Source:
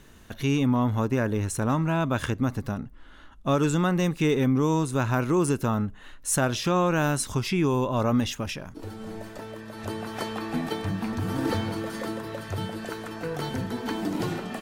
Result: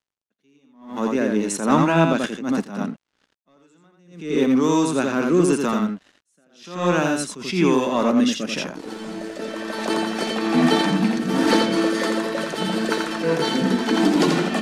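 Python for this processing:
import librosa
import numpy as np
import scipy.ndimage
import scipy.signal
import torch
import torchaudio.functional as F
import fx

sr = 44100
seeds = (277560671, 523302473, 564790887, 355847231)

y = scipy.signal.sosfilt(scipy.signal.butter(8, 170.0, 'highpass', fs=sr, output='sos'), x)
y = fx.high_shelf(y, sr, hz=4700.0, db=10.5)
y = fx.rider(y, sr, range_db=4, speed_s=2.0)
y = fx.fold_sine(y, sr, drive_db=6, ceiling_db=-6.5)
y = fx.rotary_switch(y, sr, hz=1.0, then_hz=5.5, switch_at_s=11.15)
y = np.sign(y) * np.maximum(np.abs(y) - 10.0 ** (-40.0 / 20.0), 0.0)
y = fx.air_absorb(y, sr, metres=73.0)
y = y + 10.0 ** (-4.0 / 20.0) * np.pad(y, (int(85 * sr / 1000.0), 0))[:len(y)]
y = fx.attack_slew(y, sr, db_per_s=110.0)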